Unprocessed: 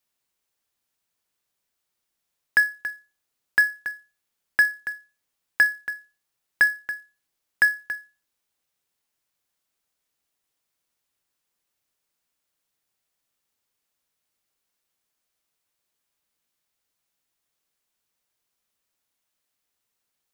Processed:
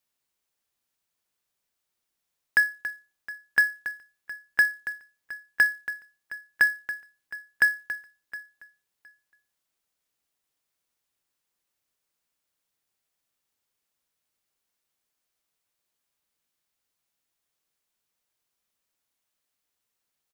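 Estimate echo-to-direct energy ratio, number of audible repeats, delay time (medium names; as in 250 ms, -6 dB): -18.0 dB, 2, 715 ms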